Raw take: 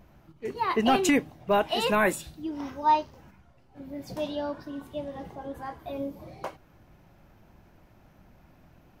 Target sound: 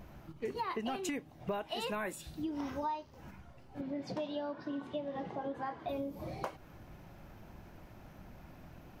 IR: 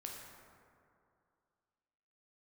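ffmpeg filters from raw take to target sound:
-filter_complex "[0:a]acompressor=threshold=0.0126:ratio=12,asettb=1/sr,asplit=3[s0][s1][s2];[s0]atrim=end=3.814[s3];[s1]atrim=start=3.81:end=5.89,asetpts=PTS-STARTPTS,afade=t=in:d=0.004:c=qsin,afade=t=out:st=2.076:d=0.004:c=qsin,highpass=150,lowpass=4200[s4];[s2]atrim=start=5.886[s5];[s3][s4]acrossfade=d=0.004:c1=hsin:c2=qsin[s6];[s6][s5]acrossfade=d=0.004:c1=qsin:c2=hsin,volume=1.5"

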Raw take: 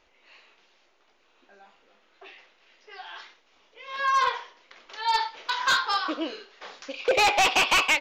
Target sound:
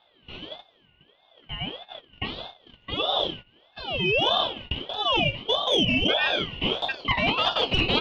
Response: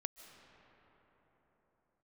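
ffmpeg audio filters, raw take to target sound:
-filter_complex "[0:a]acrossover=split=550[s0][s1];[s1]asoftclip=type=tanh:threshold=0.112[s2];[s0][s2]amix=inputs=2:normalize=0,lowpass=f=1400:t=q:w=15,acontrast=48,agate=range=0.158:threshold=0.00631:ratio=16:detection=peak,areverse,acompressor=threshold=0.0447:ratio=8,areverse,aeval=exprs='val(0)*sin(2*PI*1800*n/s+1800*0.2/1.6*sin(2*PI*1.6*n/s))':c=same,volume=2.66"

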